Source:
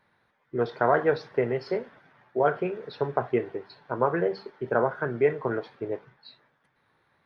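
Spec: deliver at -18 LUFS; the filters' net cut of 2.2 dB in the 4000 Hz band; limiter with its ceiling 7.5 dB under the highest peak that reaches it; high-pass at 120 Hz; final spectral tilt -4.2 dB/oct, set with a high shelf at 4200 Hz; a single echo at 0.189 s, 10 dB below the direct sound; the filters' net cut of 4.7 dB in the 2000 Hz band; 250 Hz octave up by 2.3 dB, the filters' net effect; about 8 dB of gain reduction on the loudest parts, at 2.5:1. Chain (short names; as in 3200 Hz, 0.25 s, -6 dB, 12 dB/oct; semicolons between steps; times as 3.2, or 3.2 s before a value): HPF 120 Hz; bell 250 Hz +4 dB; bell 2000 Hz -7.5 dB; bell 4000 Hz -5 dB; high shelf 4200 Hz +7.5 dB; compressor 2.5:1, threshold -29 dBFS; limiter -23 dBFS; echo 0.189 s -10 dB; gain +17.5 dB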